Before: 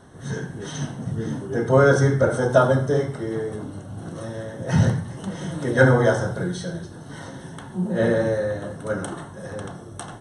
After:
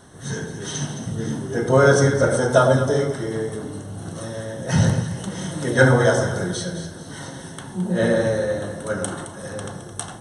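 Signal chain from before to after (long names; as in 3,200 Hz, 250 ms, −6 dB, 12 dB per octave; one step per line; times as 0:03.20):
high-shelf EQ 3,000 Hz +9.5 dB
on a send: delay that swaps between a low-pass and a high-pass 108 ms, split 910 Hz, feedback 58%, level −6 dB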